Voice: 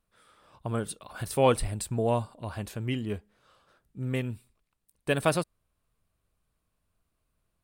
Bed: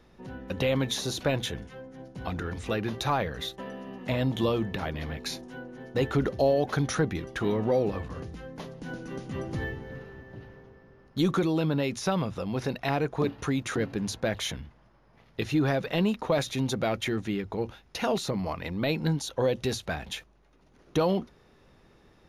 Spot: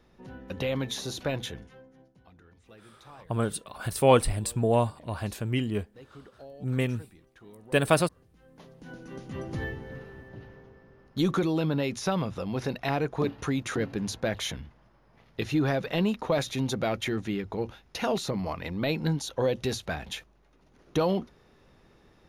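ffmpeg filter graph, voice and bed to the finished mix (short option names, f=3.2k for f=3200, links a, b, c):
-filter_complex "[0:a]adelay=2650,volume=3dB[a];[1:a]volume=19.5dB,afade=t=out:st=1.42:d=0.81:silence=0.1,afade=t=in:st=8.3:d=1.36:silence=0.0707946[b];[a][b]amix=inputs=2:normalize=0"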